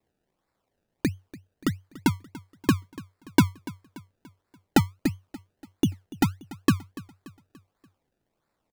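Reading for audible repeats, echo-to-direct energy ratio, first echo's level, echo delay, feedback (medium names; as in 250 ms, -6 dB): 3, -18.0 dB, -19.0 dB, 289 ms, 47%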